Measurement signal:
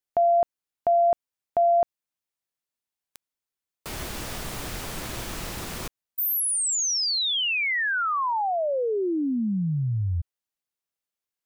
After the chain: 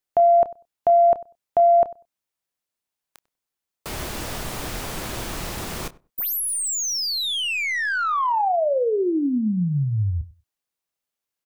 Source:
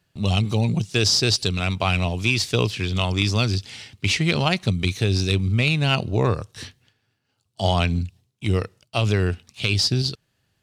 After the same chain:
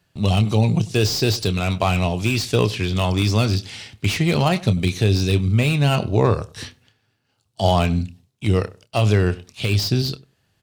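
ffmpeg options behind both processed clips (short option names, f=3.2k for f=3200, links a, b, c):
-filter_complex "[0:a]asplit=2[a][b];[b]adelay=28,volume=-14dB[c];[a][c]amix=inputs=2:normalize=0,asplit=2[d][e];[e]adelay=97,lowpass=f=1.1k:p=1,volume=-19dB,asplit=2[f][g];[g]adelay=97,lowpass=f=1.1k:p=1,volume=0.17[h];[d][f][h]amix=inputs=3:normalize=0,acrossover=split=980[i][j];[i]crystalizer=i=8:c=0[k];[j]aeval=exprs='(tanh(17.8*val(0)+0.1)-tanh(0.1))/17.8':c=same[l];[k][l]amix=inputs=2:normalize=0,volume=3dB"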